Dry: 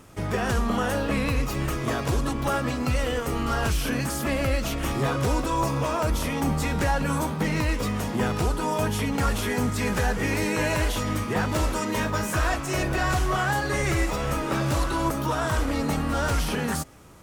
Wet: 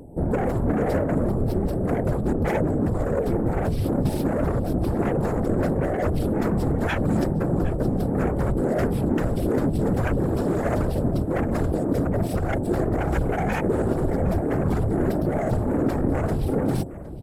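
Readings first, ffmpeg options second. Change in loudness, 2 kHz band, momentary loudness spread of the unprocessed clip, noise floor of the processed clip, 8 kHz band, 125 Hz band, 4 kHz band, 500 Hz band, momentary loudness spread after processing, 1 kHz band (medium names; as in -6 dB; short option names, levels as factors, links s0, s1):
+2.0 dB, -7.0 dB, 3 LU, -27 dBFS, -12.5 dB, +3.0 dB, -12.5 dB, +4.5 dB, 2 LU, -3.5 dB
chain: -filter_complex "[0:a]afftfilt=real='re*(1-between(b*sr/4096,880,7700))':imag='im*(1-between(b*sr/4096,880,7700))':win_size=4096:overlap=0.75,aeval=exprs='0.224*sin(PI/2*3.16*val(0)/0.224)':c=same,firequalizer=gain_entry='entry(410,0);entry(900,-12);entry(5400,7);entry(8300,-15)':delay=0.05:min_phase=1,aexciter=amount=5.2:drive=5.7:freq=11000,areverse,acompressor=mode=upward:threshold=0.0447:ratio=2.5,areverse,equalizer=f=2600:w=0.41:g=12,asplit=2[s0][s1];[s1]aecho=0:1:762:0.133[s2];[s0][s2]amix=inputs=2:normalize=0,afftfilt=real='hypot(re,im)*cos(2*PI*random(0))':imag='hypot(re,im)*sin(2*PI*random(1))':win_size=512:overlap=0.75,adynamicsmooth=sensitivity=7:basefreq=5700"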